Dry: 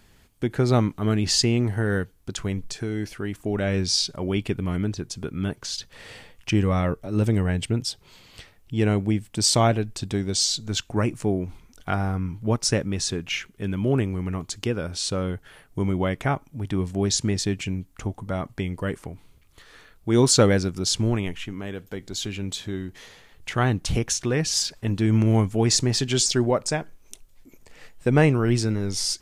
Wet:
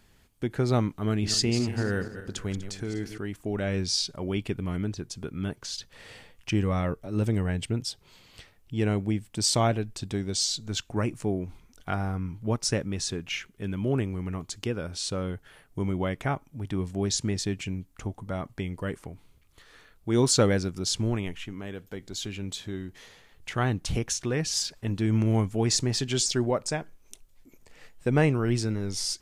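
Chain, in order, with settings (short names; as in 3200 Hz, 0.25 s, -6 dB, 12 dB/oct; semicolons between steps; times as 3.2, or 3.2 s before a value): 1.1–3.18 regenerating reverse delay 0.123 s, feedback 53%, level -10 dB; gain -4.5 dB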